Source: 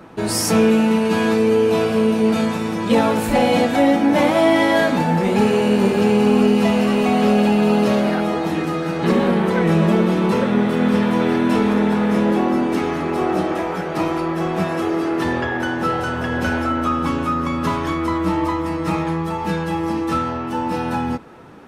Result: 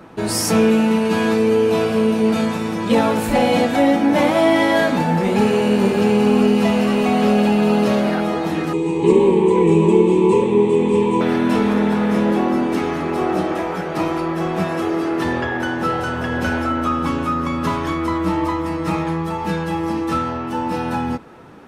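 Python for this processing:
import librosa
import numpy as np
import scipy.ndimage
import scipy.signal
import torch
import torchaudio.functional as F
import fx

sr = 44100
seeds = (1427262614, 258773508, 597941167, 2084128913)

y = fx.curve_eq(x, sr, hz=(140.0, 250.0, 400.0, 650.0, 970.0, 1400.0, 2400.0, 5200.0, 8000.0, 12000.0), db=(0, -4, 12, -16, 7, -26, 1, -11, 9, -22), at=(8.73, 11.21))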